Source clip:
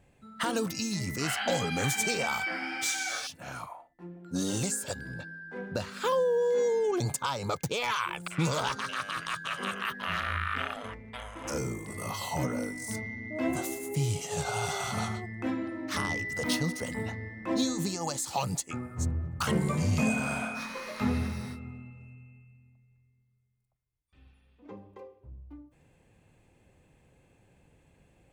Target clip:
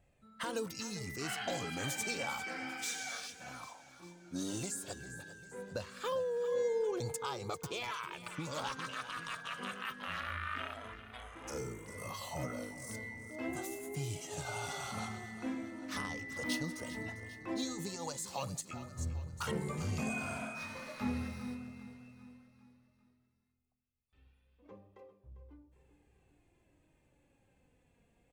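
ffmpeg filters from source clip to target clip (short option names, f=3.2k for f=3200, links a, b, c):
-filter_complex "[0:a]aecho=1:1:398|796|1194|1592|1990:0.2|0.102|0.0519|0.0265|0.0135,asettb=1/sr,asplit=3[a][b][c];[a]atrim=end=7.804[d];[b]atrim=start=7.8:end=8.55,asetpts=PTS-STARTPTS,afade=t=in:d=0.004:c=qsin,afade=t=out:st=0.746:d=0.004:c=qsin,acompressor=threshold=-28dB:ratio=6[e];[c]atrim=start=8.546[f];[d][e]acrossfade=d=0.004:c1=hsin:c2=qsin[g];[g][f]acrossfade=d=0.004:c1=qsin:c2=hsin,flanger=delay=1.5:depth=2.8:regen=49:speed=0.16:shape=triangular,volume=-4dB"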